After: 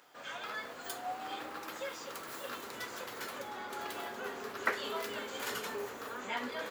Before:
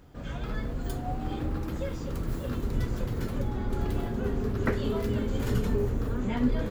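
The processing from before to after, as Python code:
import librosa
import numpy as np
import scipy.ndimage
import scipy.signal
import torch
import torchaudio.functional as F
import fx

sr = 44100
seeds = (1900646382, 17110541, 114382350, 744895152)

y = scipy.signal.sosfilt(scipy.signal.butter(2, 880.0, 'highpass', fs=sr, output='sos'), x)
y = y * librosa.db_to_amplitude(3.5)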